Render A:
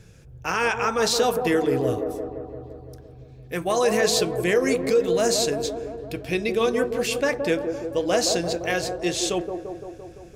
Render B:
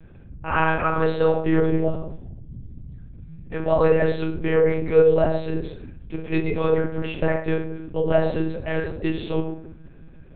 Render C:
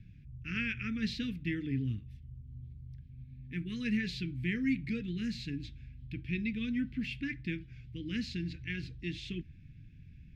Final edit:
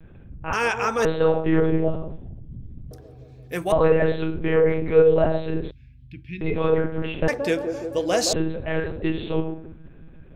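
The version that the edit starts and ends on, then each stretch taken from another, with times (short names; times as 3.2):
B
0.53–1.05 from A
2.91–3.72 from A
5.71–6.41 from C
7.28–8.33 from A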